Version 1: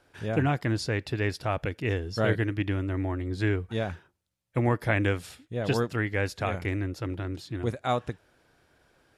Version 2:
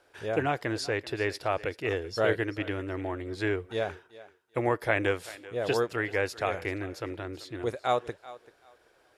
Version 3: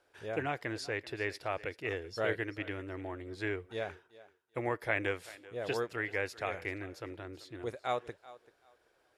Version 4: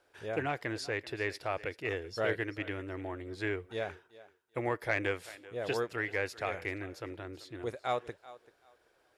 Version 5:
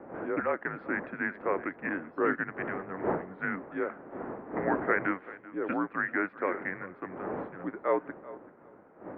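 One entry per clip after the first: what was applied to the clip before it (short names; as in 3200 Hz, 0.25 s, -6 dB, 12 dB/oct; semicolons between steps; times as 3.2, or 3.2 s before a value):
resonant low shelf 300 Hz -8.5 dB, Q 1.5; thinning echo 0.386 s, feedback 22%, high-pass 290 Hz, level -17.5 dB
dynamic EQ 2100 Hz, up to +5 dB, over -44 dBFS, Q 2; gain -7.5 dB
soft clip -18 dBFS, distortion -26 dB; gain +1.5 dB
wind noise 420 Hz -40 dBFS; mistuned SSB -180 Hz 490–2100 Hz; gain +6 dB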